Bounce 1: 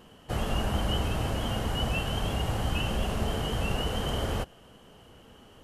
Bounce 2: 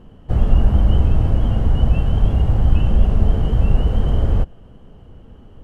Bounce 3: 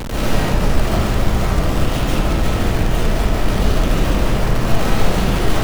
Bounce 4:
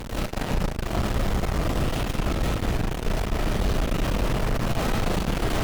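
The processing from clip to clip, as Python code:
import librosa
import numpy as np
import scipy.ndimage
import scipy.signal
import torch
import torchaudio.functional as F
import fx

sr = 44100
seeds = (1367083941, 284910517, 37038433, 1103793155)

y1 = fx.tilt_eq(x, sr, slope=-4.0)
y2 = np.sign(y1) * np.sqrt(np.mean(np.square(y1)))
y2 = fx.rev_freeverb(y2, sr, rt60_s=1.6, hf_ratio=0.65, predelay_ms=100, drr_db=-10.0)
y2 = F.gain(torch.from_numpy(y2), -11.0).numpy()
y3 = fx.tube_stage(y2, sr, drive_db=14.0, bias=0.8)
y3 = F.gain(torch.from_numpy(y3), -3.5).numpy()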